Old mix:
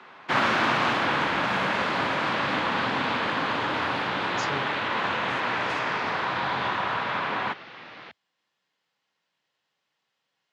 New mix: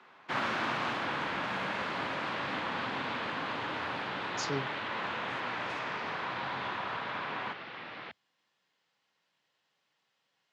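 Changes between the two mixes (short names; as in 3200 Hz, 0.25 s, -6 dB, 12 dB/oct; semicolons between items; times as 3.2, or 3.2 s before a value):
speech: send on; first sound -9.5 dB; second sound: add LPF 4400 Hz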